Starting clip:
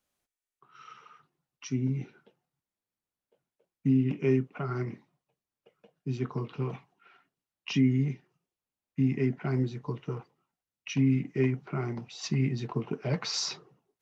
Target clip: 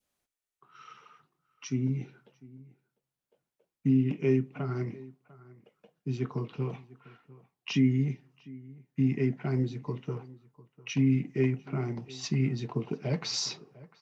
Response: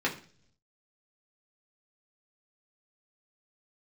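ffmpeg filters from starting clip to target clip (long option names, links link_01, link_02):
-filter_complex "[0:a]asplit=2[link_01][link_02];[link_02]adelay=699.7,volume=-21dB,highshelf=frequency=4000:gain=-15.7[link_03];[link_01][link_03]amix=inputs=2:normalize=0,asplit=2[link_04][link_05];[1:a]atrim=start_sample=2205,adelay=33[link_06];[link_05][link_06]afir=irnorm=-1:irlink=0,volume=-31dB[link_07];[link_04][link_07]amix=inputs=2:normalize=0,adynamicequalizer=threshold=0.002:dfrequency=1300:dqfactor=1.3:tfrequency=1300:tqfactor=1.3:attack=5:release=100:ratio=0.375:range=3:mode=cutabove:tftype=bell"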